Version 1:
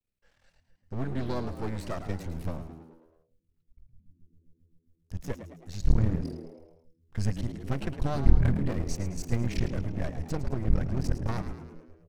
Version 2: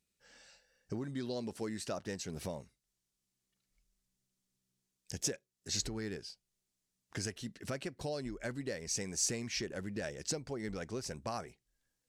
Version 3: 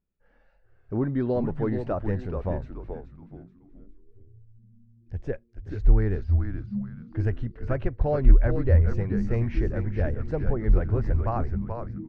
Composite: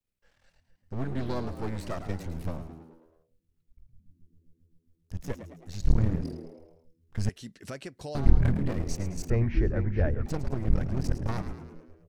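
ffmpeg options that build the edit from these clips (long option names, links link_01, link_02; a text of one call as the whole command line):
ffmpeg -i take0.wav -i take1.wav -i take2.wav -filter_complex "[0:a]asplit=3[link_01][link_02][link_03];[link_01]atrim=end=7.292[link_04];[1:a]atrim=start=7.288:end=8.152[link_05];[link_02]atrim=start=8.148:end=9.302[link_06];[2:a]atrim=start=9.298:end=10.262[link_07];[link_03]atrim=start=10.258[link_08];[link_04][link_05]acrossfade=duration=0.004:curve1=hsin:curve2=hsin[link_09];[link_09][link_06]acrossfade=duration=0.004:curve1=hsin:curve2=hsin[link_10];[link_10][link_07]acrossfade=duration=0.004:curve1=hsin:curve2=hsin[link_11];[link_11][link_08]acrossfade=duration=0.004:curve1=hsin:curve2=hsin" out.wav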